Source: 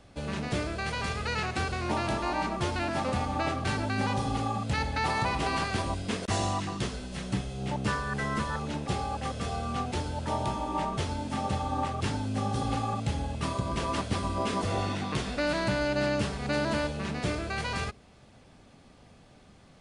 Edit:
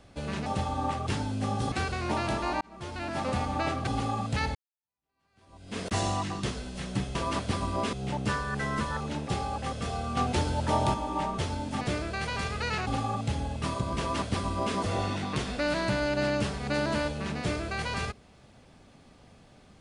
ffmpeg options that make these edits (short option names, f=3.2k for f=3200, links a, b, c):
-filter_complex "[0:a]asplit=12[a][b][c][d][e][f][g][h][i][j][k][l];[a]atrim=end=0.462[m];[b]atrim=start=11.398:end=12.662[n];[c]atrim=start=1.518:end=2.41,asetpts=PTS-STARTPTS,afade=t=out:st=0.888:d=0.004:c=hsin[o];[d]atrim=start=2.41:end=3.672,asetpts=PTS-STARTPTS,afade=t=in:d=0.71[p];[e]atrim=start=4.238:end=4.92,asetpts=PTS-STARTPTS,afade=t=out:st=0.678:d=0.004:c=hsin[q];[f]atrim=start=4.92:end=7.522,asetpts=PTS-STARTPTS,afade=t=in:d=1.26:c=exp[r];[g]atrim=start=13.768:end=14.552[s];[h]atrim=start=7.518:end=9.762[t];[i]atrim=start=9.758:end=10.532,asetpts=PTS-STARTPTS,volume=4.5dB[u];[j]atrim=start=10.528:end=11.402[v];[k]atrim=start=0.458:end=1.522[w];[l]atrim=start=12.658[x];[m][n]acrossfade=d=0.004:c1=hsin:c2=hsin[y];[o][p]concat=n=2:v=0:a=1[z];[y][z]acrossfade=d=0.004:c1=hsin:c2=hsin[aa];[q][r]concat=n=2:v=0:a=1[ab];[aa][ab]acrossfade=d=0.004:c1=hsin:c2=hsin[ac];[ac][s]acrossfade=d=0.004:c1=hsin:c2=hsin[ad];[ad][t]acrossfade=d=0.004:c1=hsin:c2=hsin[ae];[ae][u]acrossfade=d=0.004:c1=hsin:c2=hsin[af];[af][v]acrossfade=d=0.004:c1=hsin:c2=hsin[ag];[ag][w]acrossfade=d=0.004:c1=hsin:c2=hsin[ah];[ah][x]acrossfade=d=0.004:c1=hsin:c2=hsin"